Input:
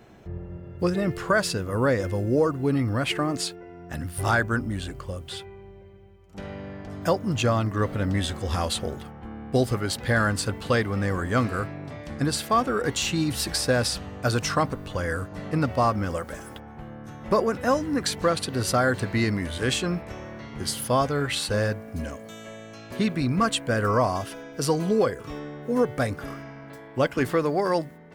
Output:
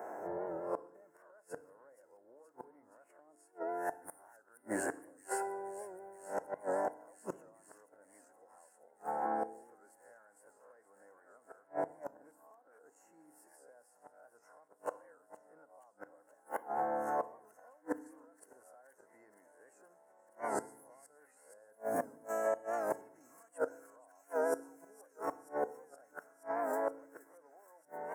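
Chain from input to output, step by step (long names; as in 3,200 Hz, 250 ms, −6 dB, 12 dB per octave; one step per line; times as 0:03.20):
peak hold with a rise ahead of every peak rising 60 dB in 0.36 s
high-pass filter 540 Hz 12 dB per octave
gain on a spectral selection 0:12.05–0:12.86, 1,600–11,000 Hz −10 dB
Chebyshev band-stop filter 1,300–8,700 Hz, order 2
parametric band 690 Hz +8.5 dB 1.9 octaves
downward compressor 10 to 1, threshold −27 dBFS, peak gain reduction 16 dB
gate with flip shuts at −28 dBFS, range −36 dB
notch comb filter 1,200 Hz
on a send: delay with a high-pass on its return 473 ms, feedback 81%, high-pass 3,400 Hz, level −14 dB
on the sum: feedback delay network reverb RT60 0.73 s, low-frequency decay 1.5×, high-frequency decay 0.9×, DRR 14 dB
wow of a warped record 78 rpm, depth 100 cents
level +5.5 dB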